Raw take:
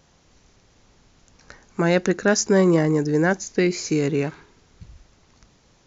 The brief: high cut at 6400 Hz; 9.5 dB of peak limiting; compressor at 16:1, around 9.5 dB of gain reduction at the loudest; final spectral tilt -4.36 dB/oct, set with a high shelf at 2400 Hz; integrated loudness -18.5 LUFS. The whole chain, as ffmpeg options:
-af "lowpass=6.4k,highshelf=f=2.4k:g=6,acompressor=threshold=-22dB:ratio=16,volume=12dB,alimiter=limit=-9.5dB:level=0:latency=1"

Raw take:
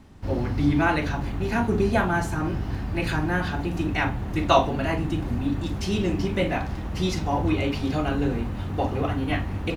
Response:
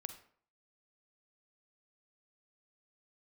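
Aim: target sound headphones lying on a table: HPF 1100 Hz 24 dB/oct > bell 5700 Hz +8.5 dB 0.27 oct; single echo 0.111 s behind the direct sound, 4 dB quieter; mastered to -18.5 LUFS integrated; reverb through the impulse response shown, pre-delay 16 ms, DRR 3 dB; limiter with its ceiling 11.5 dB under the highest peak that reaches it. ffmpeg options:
-filter_complex "[0:a]alimiter=limit=-16dB:level=0:latency=1,aecho=1:1:111:0.631,asplit=2[a][b];[1:a]atrim=start_sample=2205,adelay=16[c];[b][c]afir=irnorm=-1:irlink=0,volume=0dB[d];[a][d]amix=inputs=2:normalize=0,highpass=f=1.1k:w=0.5412,highpass=f=1.1k:w=1.3066,equalizer=f=5.7k:t=o:w=0.27:g=8.5,volume=13.5dB"

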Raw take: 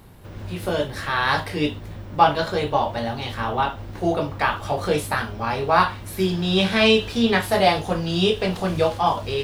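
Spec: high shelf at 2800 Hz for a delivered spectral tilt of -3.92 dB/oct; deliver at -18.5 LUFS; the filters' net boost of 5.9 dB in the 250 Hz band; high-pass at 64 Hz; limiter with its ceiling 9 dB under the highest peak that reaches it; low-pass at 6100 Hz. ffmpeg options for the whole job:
-af "highpass=64,lowpass=6.1k,equalizer=f=250:t=o:g=8,highshelf=f=2.8k:g=6.5,volume=2.5dB,alimiter=limit=-6dB:level=0:latency=1"

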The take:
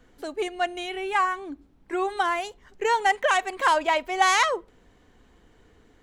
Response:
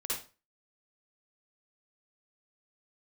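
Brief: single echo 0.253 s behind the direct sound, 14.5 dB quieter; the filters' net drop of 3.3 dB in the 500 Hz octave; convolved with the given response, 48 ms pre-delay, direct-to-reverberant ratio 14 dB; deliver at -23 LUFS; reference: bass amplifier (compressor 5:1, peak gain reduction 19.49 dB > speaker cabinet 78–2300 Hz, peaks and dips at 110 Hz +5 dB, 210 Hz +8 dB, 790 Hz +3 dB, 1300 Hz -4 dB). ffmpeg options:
-filter_complex "[0:a]equalizer=f=500:t=o:g=-5.5,aecho=1:1:253:0.188,asplit=2[a][b];[1:a]atrim=start_sample=2205,adelay=48[c];[b][c]afir=irnorm=-1:irlink=0,volume=-17dB[d];[a][d]amix=inputs=2:normalize=0,acompressor=threshold=-39dB:ratio=5,highpass=f=78:w=0.5412,highpass=f=78:w=1.3066,equalizer=f=110:t=q:w=4:g=5,equalizer=f=210:t=q:w=4:g=8,equalizer=f=790:t=q:w=4:g=3,equalizer=f=1.3k:t=q:w=4:g=-4,lowpass=f=2.3k:w=0.5412,lowpass=f=2.3k:w=1.3066,volume=18.5dB"

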